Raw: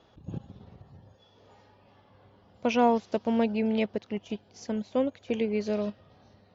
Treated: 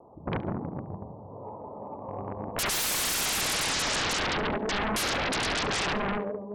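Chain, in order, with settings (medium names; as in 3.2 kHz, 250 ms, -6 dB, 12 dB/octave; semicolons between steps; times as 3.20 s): self-modulated delay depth 0.22 ms; Doppler pass-by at 2.32 s, 12 m/s, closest 7.2 m; on a send at -2.5 dB: reverberation RT60 2.1 s, pre-delay 98 ms; on the sum: vibrato 5.4 Hz 41 cents; hum notches 60/120/180/240 Hz; waveshaping leveller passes 2; peak limiter -22 dBFS, peak gain reduction 10 dB; steep low-pass 1.1 kHz 72 dB/octave; bass shelf 120 Hz -11 dB; sine folder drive 19 dB, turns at -28.5 dBFS; thinning echo 70 ms, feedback 23%, level -16 dB; trim +3 dB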